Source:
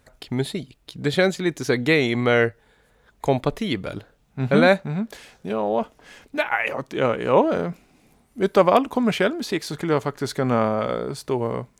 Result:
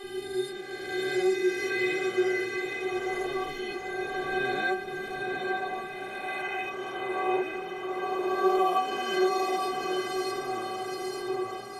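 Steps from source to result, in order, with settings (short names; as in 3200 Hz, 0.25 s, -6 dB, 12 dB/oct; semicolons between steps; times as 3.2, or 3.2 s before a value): spectral swells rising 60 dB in 2.85 s; dispersion lows, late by 40 ms, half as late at 380 Hz; on a send: diffused feedback echo 0.855 s, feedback 48%, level -3.5 dB; on the sum: buzz 400 Hz, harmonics 7, -29 dBFS -5 dB/oct; metallic resonator 370 Hz, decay 0.27 s, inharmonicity 0.008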